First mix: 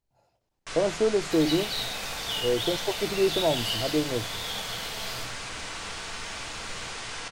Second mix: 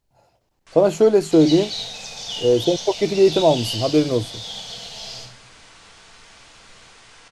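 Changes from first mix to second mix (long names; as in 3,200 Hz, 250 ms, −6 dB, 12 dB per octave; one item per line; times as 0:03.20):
speech +9.5 dB
first sound −11.0 dB
second sound: add low-pass with resonance 6,200 Hz, resonance Q 3.2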